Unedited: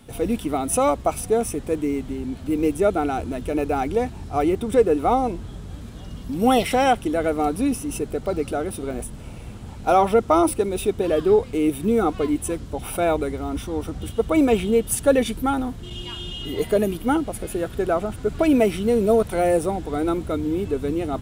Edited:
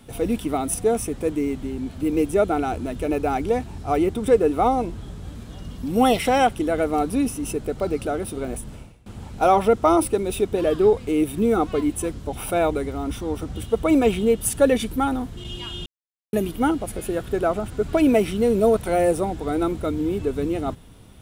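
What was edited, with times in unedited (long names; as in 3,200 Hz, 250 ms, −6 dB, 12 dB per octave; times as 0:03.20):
0:00.74–0:01.20: remove
0:09.21–0:09.52: fade out quadratic, to −21 dB
0:16.32–0:16.79: silence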